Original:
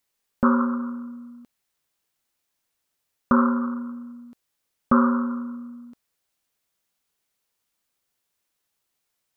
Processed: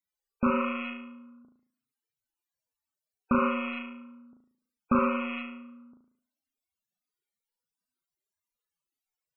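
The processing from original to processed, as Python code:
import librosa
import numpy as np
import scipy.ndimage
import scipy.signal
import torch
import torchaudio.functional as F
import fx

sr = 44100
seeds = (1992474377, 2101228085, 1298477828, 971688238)

y = fx.rattle_buzz(x, sr, strikes_db=-33.0, level_db=-18.0)
y = fx.room_flutter(y, sr, wall_m=6.2, rt60_s=0.59)
y = fx.spec_topn(y, sr, count=64)
y = fx.low_shelf(y, sr, hz=360.0, db=3.0)
y = y * librosa.db_to_amplitude(-8.0)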